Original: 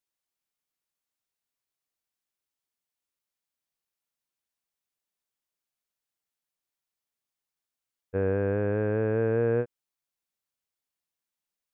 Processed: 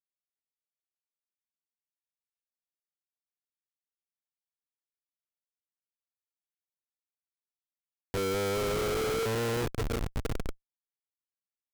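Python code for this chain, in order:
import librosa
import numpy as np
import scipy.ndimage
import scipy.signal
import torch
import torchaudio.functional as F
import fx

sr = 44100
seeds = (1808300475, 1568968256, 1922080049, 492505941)

y = fx.highpass(x, sr, hz=310.0, slope=24, at=(8.17, 9.26))
y = fx.echo_diffused(y, sr, ms=529, feedback_pct=72, wet_db=-13)
y = fx.schmitt(y, sr, flips_db=-32.5)
y = y * librosa.db_to_amplitude(6.0)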